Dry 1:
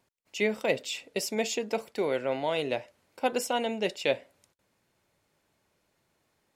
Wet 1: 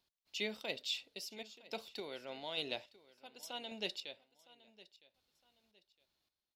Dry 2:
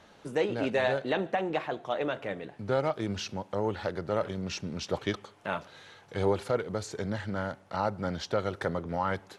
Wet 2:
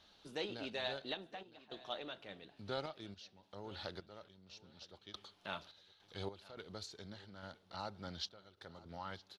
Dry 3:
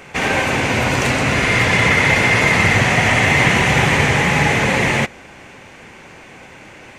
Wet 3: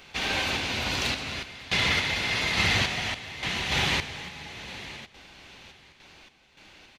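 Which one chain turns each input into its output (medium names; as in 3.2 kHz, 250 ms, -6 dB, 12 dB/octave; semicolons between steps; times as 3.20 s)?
graphic EQ 125/250/500/1000/2000/4000/8000 Hz -11/-5/-9/-5/-8/+10/-9 dB; random-step tremolo 3.5 Hz, depth 90%; feedback delay 961 ms, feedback 30%, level -20 dB; trim -3.5 dB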